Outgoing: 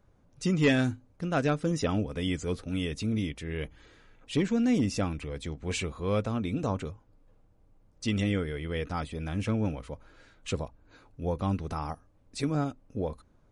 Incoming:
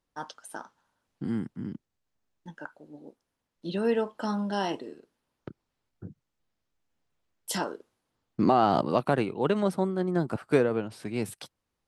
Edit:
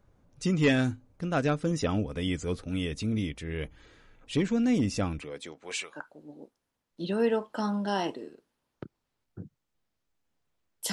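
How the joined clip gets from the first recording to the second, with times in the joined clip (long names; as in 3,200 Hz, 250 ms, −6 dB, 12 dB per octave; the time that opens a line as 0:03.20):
outgoing
0:05.20–0:05.99: high-pass filter 200 Hz → 1,100 Hz
0:05.94: continue with incoming from 0:02.59, crossfade 0.10 s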